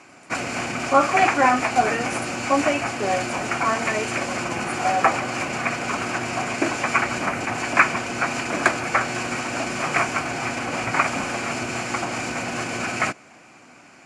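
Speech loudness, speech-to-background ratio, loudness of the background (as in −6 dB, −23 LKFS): −23.0 LKFS, 1.0 dB, −24.0 LKFS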